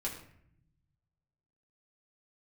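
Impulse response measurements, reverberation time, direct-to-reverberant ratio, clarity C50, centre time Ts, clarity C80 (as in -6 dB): 0.65 s, -3.5 dB, 7.5 dB, 25 ms, 10.0 dB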